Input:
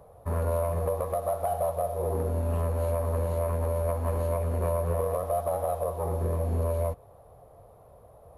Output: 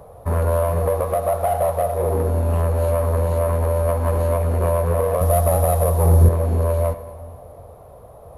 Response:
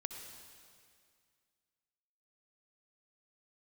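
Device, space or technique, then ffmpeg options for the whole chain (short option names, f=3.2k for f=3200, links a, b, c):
saturated reverb return: -filter_complex "[0:a]asplit=2[a][b];[1:a]atrim=start_sample=2205[c];[b][c]afir=irnorm=-1:irlink=0,asoftclip=type=tanh:threshold=-31dB,volume=-2dB[d];[a][d]amix=inputs=2:normalize=0,asettb=1/sr,asplit=3[e][f][g];[e]atrim=end=5.214[h];[f]atrim=start=5.21:end=6.29,asetpts=PTS-STARTPTS,afade=t=in:d=0.004:c=qsin,afade=t=out:st=1.076:d=0.004:c=qsin,bass=f=250:g=10,treble=f=4k:g=10[i];[g]atrim=start=6.286[j];[h][i]acrossfade=d=0.004:c1=hsin:c2=qsin[k];[k][j]acrossfade=d=0.004:c1=qsin:c2=hsin,volume=6dB"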